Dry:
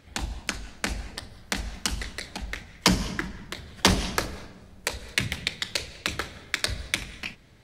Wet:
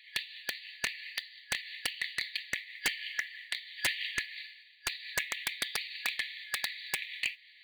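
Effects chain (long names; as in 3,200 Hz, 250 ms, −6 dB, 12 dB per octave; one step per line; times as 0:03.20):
treble cut that deepens with the level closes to 2,900 Hz, closed at −24.5 dBFS
brick-wall band-pass 1,700–4,700 Hz
in parallel at +2.5 dB: downward compressor, threshold −40 dBFS, peak gain reduction 18.5 dB
on the sum: noise that follows the level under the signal 31 dB
wave folding −20.5 dBFS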